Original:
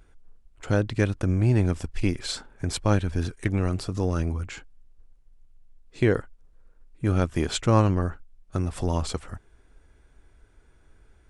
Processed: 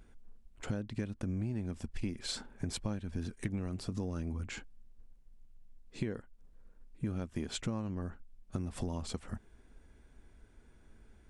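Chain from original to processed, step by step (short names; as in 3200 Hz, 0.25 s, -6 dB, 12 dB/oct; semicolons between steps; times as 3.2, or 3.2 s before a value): bell 220 Hz +9.5 dB 0.49 oct; compressor 10:1, threshold -30 dBFS, peak gain reduction 19.5 dB; bell 1300 Hz -3 dB 0.37 oct; gain -3 dB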